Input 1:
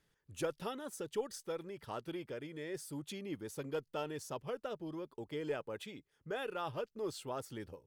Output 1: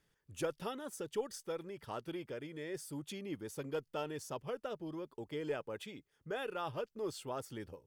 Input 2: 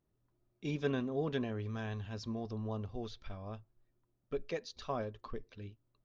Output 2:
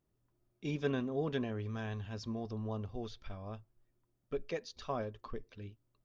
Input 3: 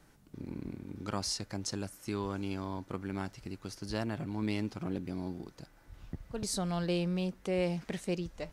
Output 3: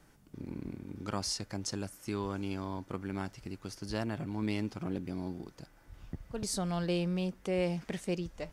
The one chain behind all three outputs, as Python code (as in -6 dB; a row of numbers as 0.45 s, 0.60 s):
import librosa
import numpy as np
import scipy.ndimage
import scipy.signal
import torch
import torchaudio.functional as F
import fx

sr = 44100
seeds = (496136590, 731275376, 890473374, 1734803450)

y = fx.notch(x, sr, hz=4000.0, q=19.0)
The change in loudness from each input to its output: 0.0 LU, 0.0 LU, 0.0 LU